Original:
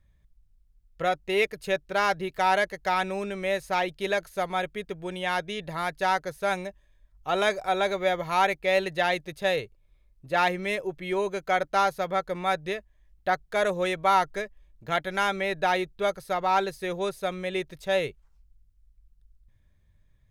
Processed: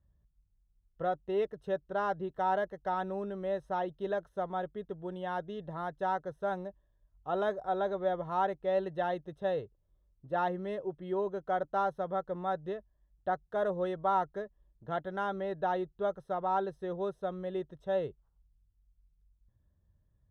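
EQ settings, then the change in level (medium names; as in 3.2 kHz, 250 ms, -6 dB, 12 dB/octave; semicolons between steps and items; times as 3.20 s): boxcar filter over 19 samples; high-pass 41 Hz; -4.5 dB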